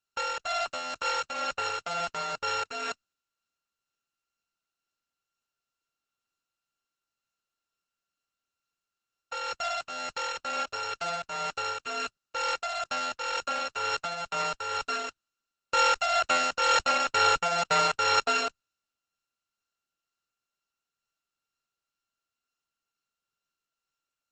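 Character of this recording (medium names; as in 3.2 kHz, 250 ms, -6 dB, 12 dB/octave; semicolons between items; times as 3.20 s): a buzz of ramps at a fixed pitch in blocks of 32 samples; tremolo triangle 2.1 Hz, depth 45%; Opus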